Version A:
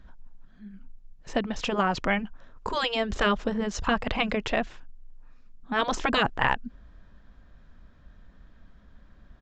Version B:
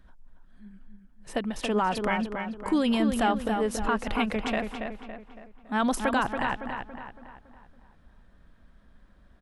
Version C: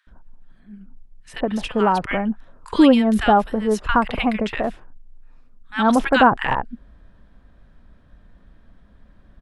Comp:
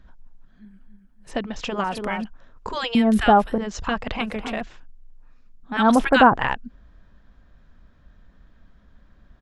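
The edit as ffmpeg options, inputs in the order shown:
-filter_complex "[1:a]asplit=3[s0][s1][s2];[2:a]asplit=2[s3][s4];[0:a]asplit=6[s5][s6][s7][s8][s9][s10];[s5]atrim=end=0.652[s11];[s0]atrim=start=0.648:end=1.312[s12];[s6]atrim=start=1.308:end=1.842[s13];[s1]atrim=start=1.838:end=2.242[s14];[s7]atrim=start=2.238:end=2.952[s15];[s3]atrim=start=2.948:end=3.582[s16];[s8]atrim=start=3.578:end=4.212[s17];[s2]atrim=start=4.208:end=4.612[s18];[s9]atrim=start=4.608:end=5.772[s19];[s4]atrim=start=5.768:end=6.362[s20];[s10]atrim=start=6.358[s21];[s11][s12]acrossfade=d=0.004:c1=hsin:c2=hsin[s22];[s22][s13]acrossfade=d=0.004:c1=hsin:c2=hsin[s23];[s23][s14]acrossfade=d=0.004:c1=hsin:c2=hsin[s24];[s24][s15]acrossfade=d=0.004:c1=hsin:c2=hsin[s25];[s25][s16]acrossfade=d=0.004:c1=hsin:c2=hsin[s26];[s26][s17]acrossfade=d=0.004:c1=hsin:c2=hsin[s27];[s27][s18]acrossfade=d=0.004:c1=hsin:c2=hsin[s28];[s28][s19]acrossfade=d=0.004:c1=hsin:c2=hsin[s29];[s29][s20]acrossfade=d=0.004:c1=hsin:c2=hsin[s30];[s30][s21]acrossfade=d=0.004:c1=hsin:c2=hsin"

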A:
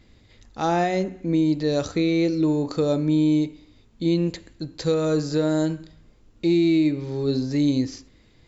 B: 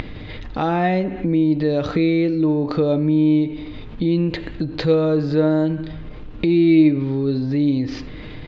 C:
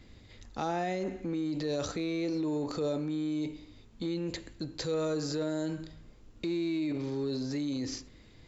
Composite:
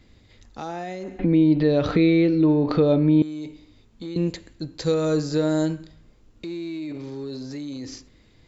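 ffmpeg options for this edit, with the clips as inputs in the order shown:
-filter_complex "[2:a]asplit=3[s0][s1][s2];[s0]atrim=end=1.192[s3];[1:a]atrim=start=1.188:end=3.222[s4];[s1]atrim=start=3.218:end=4.162[s5];[0:a]atrim=start=4.158:end=5.912[s6];[s2]atrim=start=5.908[s7];[s3][s4]acrossfade=d=0.004:c1=hsin:c2=hsin[s8];[s8][s5]acrossfade=d=0.004:c1=hsin:c2=hsin[s9];[s9][s6]acrossfade=d=0.004:c1=hsin:c2=hsin[s10];[s10][s7]acrossfade=d=0.004:c1=hsin:c2=hsin"

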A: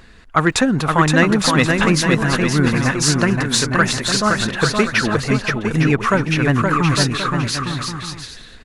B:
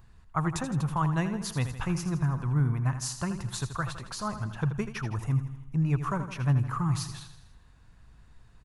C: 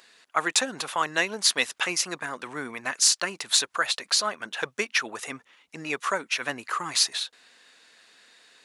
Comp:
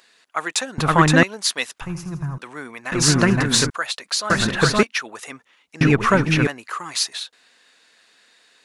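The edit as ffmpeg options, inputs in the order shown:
-filter_complex "[0:a]asplit=4[s0][s1][s2][s3];[2:a]asplit=6[s4][s5][s6][s7][s8][s9];[s4]atrim=end=0.782[s10];[s0]atrim=start=0.778:end=1.232[s11];[s5]atrim=start=1.228:end=1.812[s12];[1:a]atrim=start=1.808:end=2.382[s13];[s6]atrim=start=2.378:end=2.922[s14];[s1]atrim=start=2.918:end=3.702[s15];[s7]atrim=start=3.698:end=4.302[s16];[s2]atrim=start=4.298:end=4.832[s17];[s8]atrim=start=4.828:end=5.812[s18];[s3]atrim=start=5.808:end=6.472[s19];[s9]atrim=start=6.468[s20];[s10][s11]acrossfade=d=0.004:c1=hsin:c2=hsin[s21];[s21][s12]acrossfade=d=0.004:c1=hsin:c2=hsin[s22];[s22][s13]acrossfade=d=0.004:c1=hsin:c2=hsin[s23];[s23][s14]acrossfade=d=0.004:c1=hsin:c2=hsin[s24];[s24][s15]acrossfade=d=0.004:c1=hsin:c2=hsin[s25];[s25][s16]acrossfade=d=0.004:c1=hsin:c2=hsin[s26];[s26][s17]acrossfade=d=0.004:c1=hsin:c2=hsin[s27];[s27][s18]acrossfade=d=0.004:c1=hsin:c2=hsin[s28];[s28][s19]acrossfade=d=0.004:c1=hsin:c2=hsin[s29];[s29][s20]acrossfade=d=0.004:c1=hsin:c2=hsin"

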